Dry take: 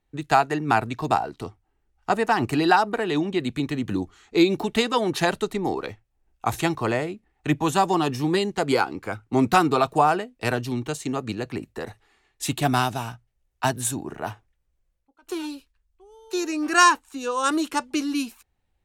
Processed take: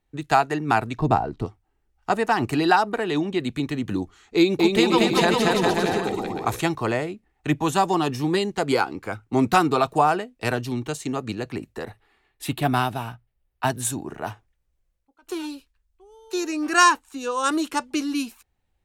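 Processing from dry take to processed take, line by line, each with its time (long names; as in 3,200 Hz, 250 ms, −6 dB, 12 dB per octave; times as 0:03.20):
0:00.98–0:01.46: spectral tilt −3 dB per octave
0:04.36–0:06.60: bouncing-ball delay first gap 230 ms, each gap 0.75×, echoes 6, each echo −2 dB
0:11.85–0:13.70: parametric band 6,600 Hz −11.5 dB 0.87 octaves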